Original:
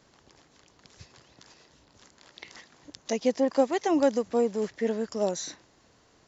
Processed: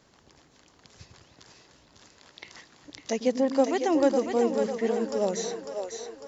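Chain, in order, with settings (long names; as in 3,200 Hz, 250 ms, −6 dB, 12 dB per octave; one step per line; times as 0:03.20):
echo with a time of its own for lows and highs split 350 Hz, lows 100 ms, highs 550 ms, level −6 dB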